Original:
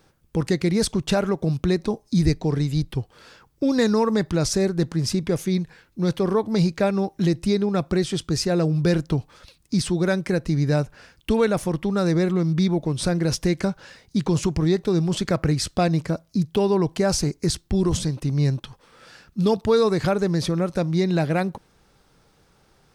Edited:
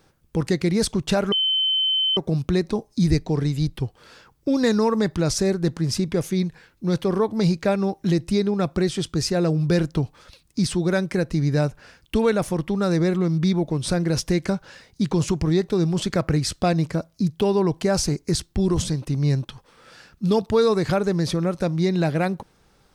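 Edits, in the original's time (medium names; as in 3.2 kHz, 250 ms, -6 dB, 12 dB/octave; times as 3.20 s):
1.32 s: add tone 3.07 kHz -18 dBFS 0.85 s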